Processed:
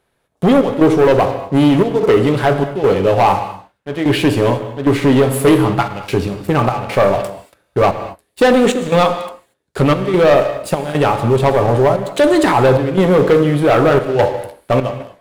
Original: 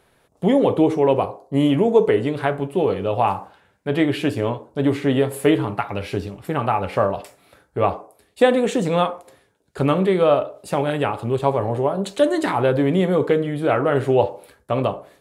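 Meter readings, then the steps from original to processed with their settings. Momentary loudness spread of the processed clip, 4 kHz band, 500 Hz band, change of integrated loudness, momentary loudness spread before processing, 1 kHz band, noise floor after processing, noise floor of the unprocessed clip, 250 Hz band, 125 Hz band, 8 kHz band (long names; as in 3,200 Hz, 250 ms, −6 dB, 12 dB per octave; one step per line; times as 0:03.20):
9 LU, +7.5 dB, +6.0 dB, +6.5 dB, 9 LU, +6.5 dB, −66 dBFS, −61 dBFS, +6.0 dB, +7.5 dB, +9.5 dB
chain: gate pattern "xxx.xxxxx." 74 BPM −12 dB
leveller curve on the samples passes 3
reverb whose tail is shaped and stops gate 260 ms flat, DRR 10 dB
level −1 dB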